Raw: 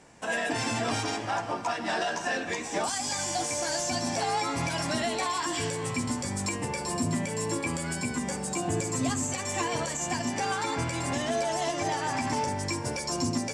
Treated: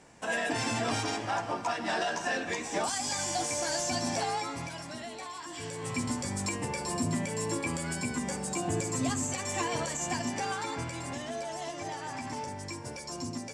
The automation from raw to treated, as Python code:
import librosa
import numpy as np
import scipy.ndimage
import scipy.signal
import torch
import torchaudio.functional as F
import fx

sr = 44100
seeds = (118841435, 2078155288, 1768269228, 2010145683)

y = fx.gain(x, sr, db=fx.line((4.17, -1.5), (4.87, -12.0), (5.48, -12.0), (5.98, -2.0), (10.16, -2.0), (11.28, -8.5)))